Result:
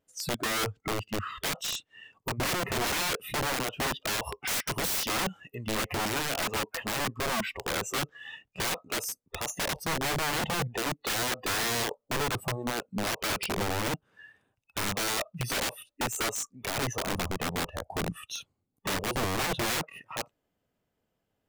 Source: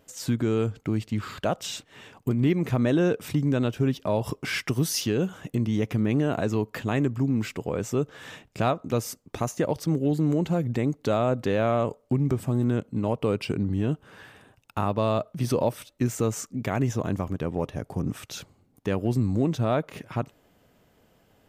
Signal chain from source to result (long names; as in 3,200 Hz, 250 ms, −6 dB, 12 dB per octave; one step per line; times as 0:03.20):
noise reduction from a noise print of the clip's start 21 dB
wrap-around overflow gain 27 dB
level +2.5 dB